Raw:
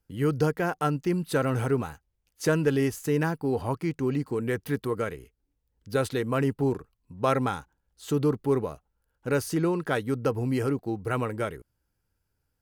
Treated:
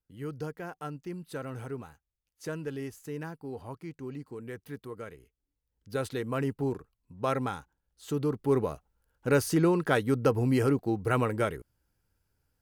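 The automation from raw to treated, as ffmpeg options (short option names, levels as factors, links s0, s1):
-af "volume=1.19,afade=t=in:st=4.97:d=1.27:silence=0.421697,afade=t=in:st=8.31:d=0.4:silence=0.473151"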